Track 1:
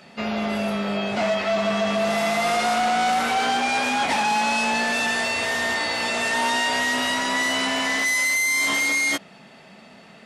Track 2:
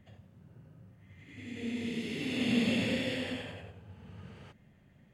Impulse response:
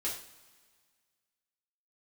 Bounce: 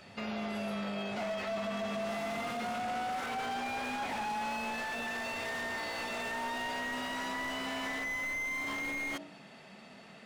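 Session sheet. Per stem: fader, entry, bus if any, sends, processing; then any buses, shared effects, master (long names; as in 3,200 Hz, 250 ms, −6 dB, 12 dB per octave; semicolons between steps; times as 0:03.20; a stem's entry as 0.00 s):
−5.5 dB, 0.00 s, no send, hum removal 58.01 Hz, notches 16; slew-rate limiting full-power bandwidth 120 Hz
−7.0 dB, 0.00 s, no send, no processing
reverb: not used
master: brickwall limiter −29.5 dBFS, peak gain reduction 11.5 dB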